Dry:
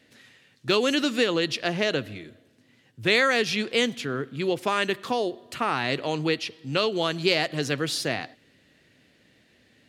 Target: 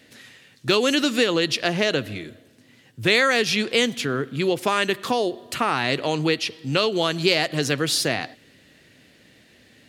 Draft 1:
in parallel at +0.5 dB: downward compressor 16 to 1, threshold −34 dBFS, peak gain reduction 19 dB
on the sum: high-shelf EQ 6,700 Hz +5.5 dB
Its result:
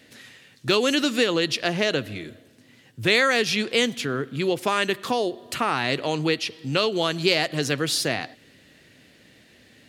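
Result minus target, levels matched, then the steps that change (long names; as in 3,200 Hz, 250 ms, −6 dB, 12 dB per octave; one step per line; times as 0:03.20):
downward compressor: peak gain reduction +6 dB
change: downward compressor 16 to 1, threshold −27.5 dBFS, peak gain reduction 12.5 dB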